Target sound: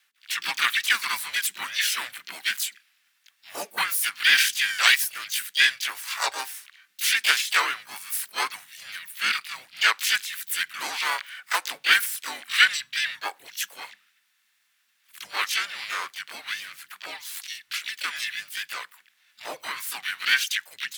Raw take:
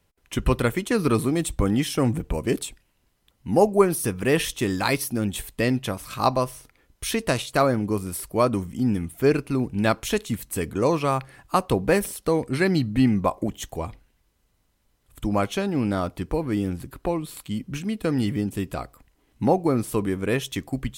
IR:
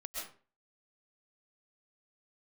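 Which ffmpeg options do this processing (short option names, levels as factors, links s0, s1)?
-filter_complex "[0:a]afreqshift=-230,highpass=f=1600:t=q:w=2.8,asplit=4[s0][s1][s2][s3];[s1]asetrate=52444,aresample=44100,atempo=0.840896,volume=0.794[s4];[s2]asetrate=66075,aresample=44100,atempo=0.66742,volume=0.794[s5];[s3]asetrate=88200,aresample=44100,atempo=0.5,volume=0.794[s6];[s0][s4][s5][s6]amix=inputs=4:normalize=0"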